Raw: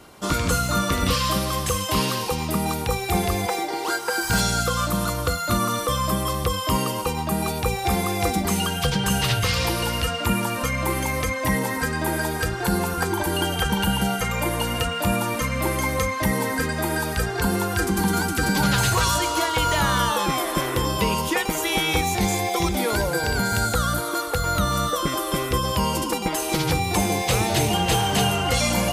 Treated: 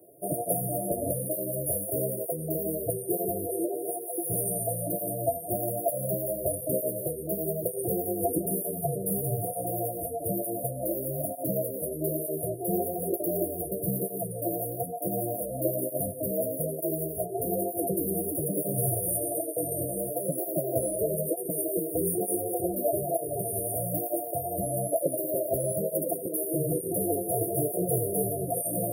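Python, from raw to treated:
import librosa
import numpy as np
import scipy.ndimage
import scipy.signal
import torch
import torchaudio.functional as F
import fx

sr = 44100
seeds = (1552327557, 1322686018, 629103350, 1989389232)

y = scipy.signal.sosfilt(scipy.signal.butter(4, 160.0, 'highpass', fs=sr, output='sos'), x)
y = fx.fixed_phaser(y, sr, hz=540.0, stages=4)
y = y + 10.0 ** (-16.5 / 20.0) * np.pad(y, (int(180 * sr / 1000.0), 0))[:len(y)]
y = fx.formant_shift(y, sr, semitones=5)
y = fx.brickwall_bandstop(y, sr, low_hz=710.0, high_hz=8900.0)
y = fx.low_shelf(y, sr, hz=390.0, db=6.0)
y = fx.flanger_cancel(y, sr, hz=1.1, depth_ms=7.9)
y = y * librosa.db_to_amplitude(3.5)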